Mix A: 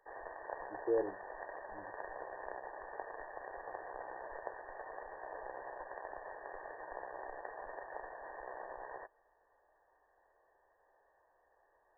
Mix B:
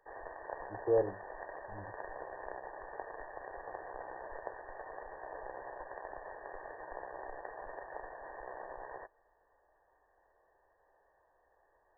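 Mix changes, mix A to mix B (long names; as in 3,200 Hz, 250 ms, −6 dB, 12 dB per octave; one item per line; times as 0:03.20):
speech: remove resonant band-pass 350 Hz, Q 2.1
background: add low-shelf EQ 250 Hz +6.5 dB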